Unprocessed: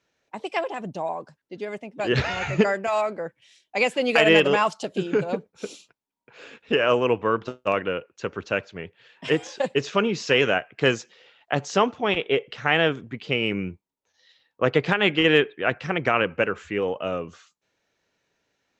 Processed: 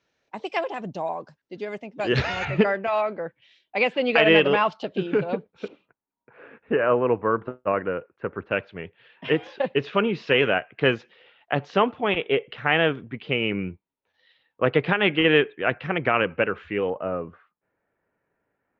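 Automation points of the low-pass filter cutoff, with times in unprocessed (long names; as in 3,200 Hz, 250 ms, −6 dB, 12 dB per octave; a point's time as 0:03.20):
low-pass filter 24 dB per octave
6,200 Hz
from 0:02.45 3,900 Hz
from 0:05.68 1,900 Hz
from 0:08.51 3,400 Hz
from 0:16.90 1,800 Hz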